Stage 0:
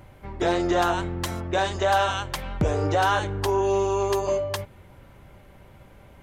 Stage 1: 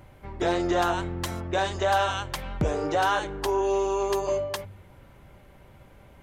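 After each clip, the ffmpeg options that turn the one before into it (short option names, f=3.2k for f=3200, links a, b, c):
-af "bandreject=f=97.6:t=h:w=4,bandreject=f=195.2:t=h:w=4,volume=-2dB"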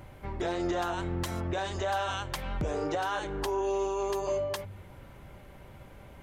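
-af "alimiter=level_in=0.5dB:limit=-24dB:level=0:latency=1:release=244,volume=-0.5dB,volume=2dB"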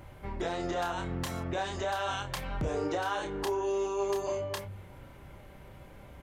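-filter_complex "[0:a]asplit=2[a][b];[b]adelay=30,volume=-6dB[c];[a][c]amix=inputs=2:normalize=0,volume=-1.5dB"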